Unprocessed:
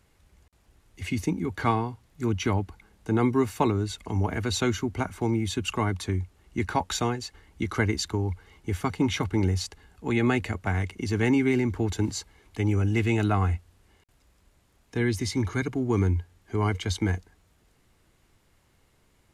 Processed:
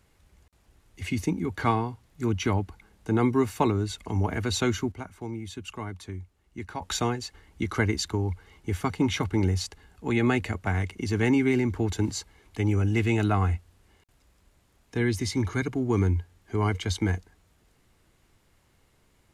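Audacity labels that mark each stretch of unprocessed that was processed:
4.920000	6.820000	gain -9.5 dB

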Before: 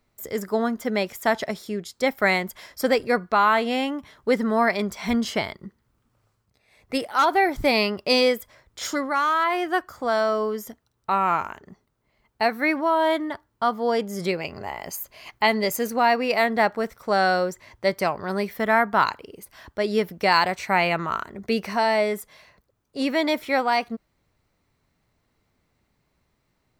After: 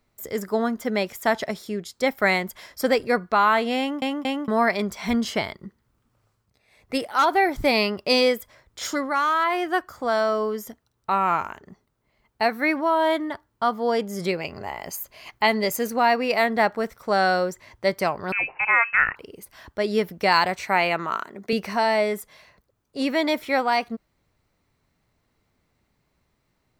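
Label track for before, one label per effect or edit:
3.790000	3.790000	stutter in place 0.23 s, 3 plays
18.320000	19.160000	inverted band carrier 2800 Hz
20.680000	21.530000	HPF 210 Hz

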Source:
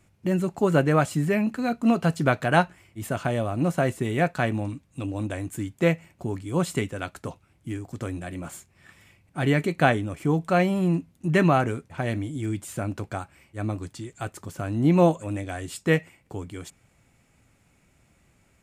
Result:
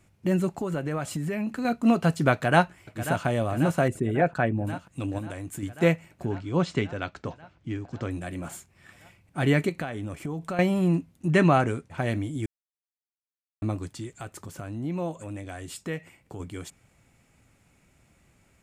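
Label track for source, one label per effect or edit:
0.540000	1.650000	compressor, threshold -26 dBFS
2.330000	3.250000	echo throw 0.54 s, feedback 75%, level -11.5 dB
3.880000	4.670000	formant sharpening exponent 1.5
5.180000	5.630000	compressor, threshold -31 dBFS
6.250000	8.110000	LPF 5700 Hz 24 dB/oct
9.690000	10.590000	compressor 10:1, threshold -28 dBFS
11.330000	11.910000	LPF 11000 Hz 24 dB/oct
12.460000	13.620000	mute
14.190000	16.400000	compressor 2:1, threshold -37 dBFS

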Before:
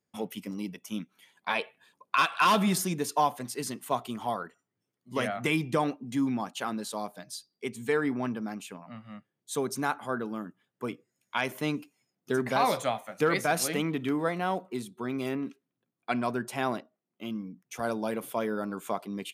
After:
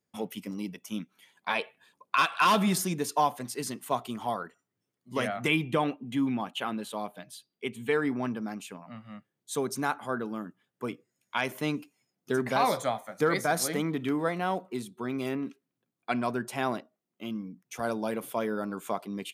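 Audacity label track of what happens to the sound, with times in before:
5.480000	7.930000	EQ curve 1800 Hz 0 dB, 3100 Hz +6 dB, 5000 Hz -11 dB, 11000 Hz -3 dB
12.690000	13.970000	bell 2700 Hz -13.5 dB 0.24 oct

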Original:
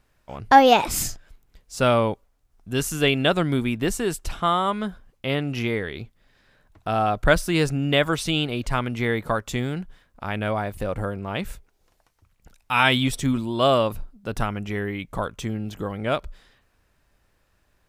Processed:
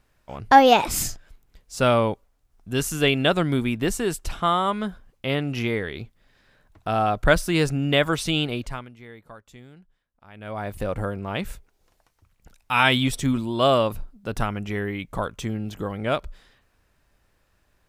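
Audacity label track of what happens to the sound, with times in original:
8.530000	10.720000	dip -20 dB, fades 0.47 s quadratic

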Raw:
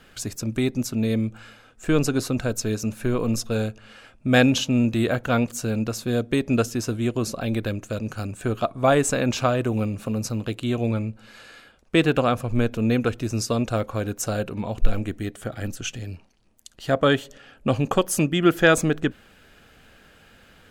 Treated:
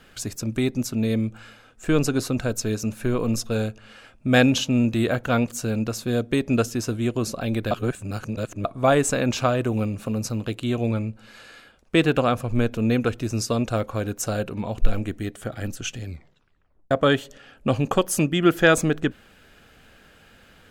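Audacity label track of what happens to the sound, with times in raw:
7.710000	8.650000	reverse
16.050000	16.050000	tape stop 0.86 s

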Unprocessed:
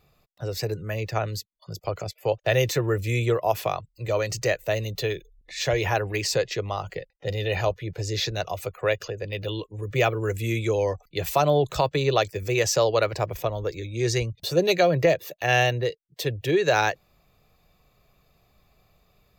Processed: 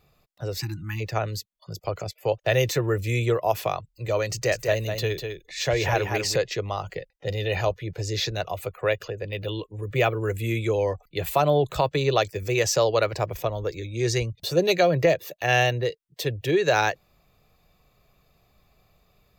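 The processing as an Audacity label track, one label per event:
0.610000	1.000000	spectral delete 360–780 Hz
4.290000	6.360000	echo 0.199 s -6 dB
8.370000	11.900000	bell 5700 Hz -8.5 dB 0.53 oct

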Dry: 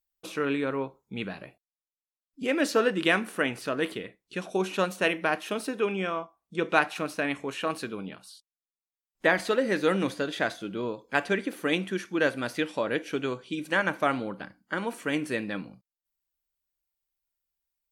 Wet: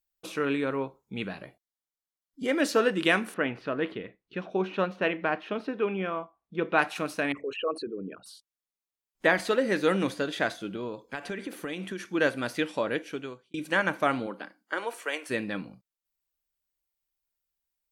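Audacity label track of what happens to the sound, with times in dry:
1.430000	2.600000	Butterworth band-stop 2600 Hz, Q 6.6
3.340000	6.790000	air absorption 290 m
7.320000	8.260000	formant sharpening exponent 3
10.740000	12.020000	compressor 10:1, threshold -30 dBFS
12.840000	13.540000	fade out
14.260000	15.290000	HPF 210 Hz -> 540 Hz 24 dB/oct

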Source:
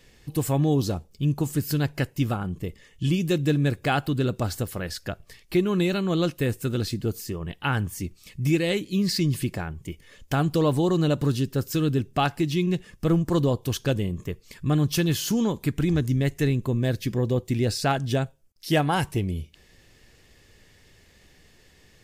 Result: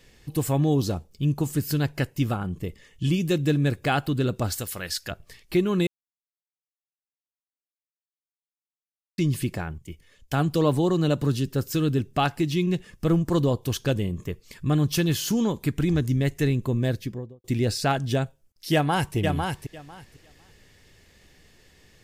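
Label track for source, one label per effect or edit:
4.520000	5.110000	tilt shelf lows -6.5 dB, about 1300 Hz
5.870000	9.180000	mute
9.780000	11.460000	three-band expander depth 40%
16.820000	17.440000	studio fade out
18.730000	19.160000	echo throw 0.5 s, feedback 15%, level -4.5 dB

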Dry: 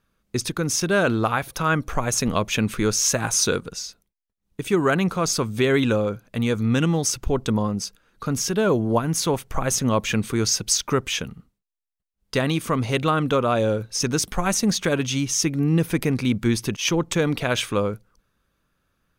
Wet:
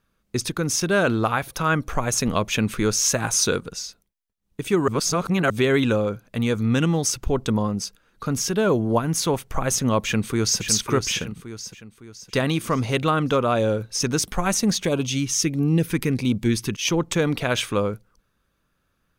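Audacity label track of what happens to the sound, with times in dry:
4.880000	5.500000	reverse
9.980000	10.620000	echo throw 0.56 s, feedback 45%, level -7 dB
14.820000	16.900000	LFO notch sine 1.5 Hz 590–1900 Hz

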